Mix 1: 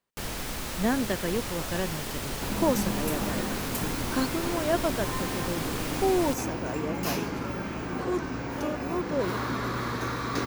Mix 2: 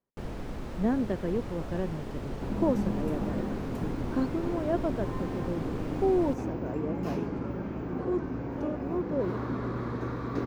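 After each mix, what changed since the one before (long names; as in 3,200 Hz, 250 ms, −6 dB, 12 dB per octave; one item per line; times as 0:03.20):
master: add drawn EQ curve 400 Hz 0 dB, 7,800 Hz −22 dB, 12,000 Hz −27 dB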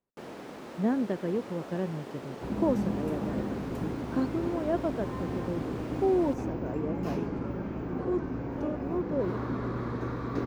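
first sound: add high-pass filter 270 Hz 12 dB per octave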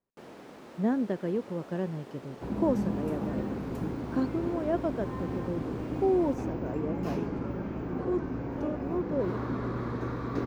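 first sound −5.0 dB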